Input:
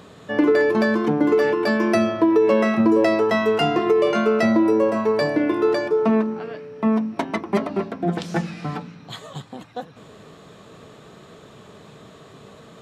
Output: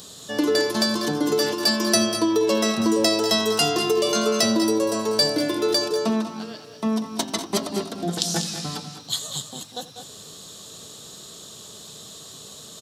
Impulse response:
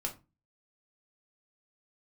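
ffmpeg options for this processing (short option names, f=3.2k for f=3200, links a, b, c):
-filter_complex "[0:a]aexciter=amount=12.2:drive=4.2:freq=3.4k,asplit=2[a][b];[b]aecho=0:1:86|193|212:0.1|0.266|0.266[c];[a][c]amix=inputs=2:normalize=0,volume=-4.5dB"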